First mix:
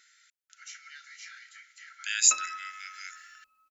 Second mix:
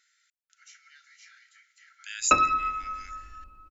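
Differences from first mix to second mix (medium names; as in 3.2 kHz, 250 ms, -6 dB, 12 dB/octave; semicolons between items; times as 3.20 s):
speech -7.5 dB; background: remove differentiator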